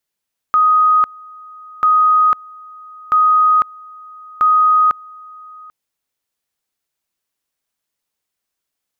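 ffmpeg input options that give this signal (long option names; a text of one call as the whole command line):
ffmpeg -f lavfi -i "aevalsrc='pow(10,(-8.5-25.5*gte(mod(t,1.29),0.5))/20)*sin(2*PI*1250*t)':duration=5.16:sample_rate=44100" out.wav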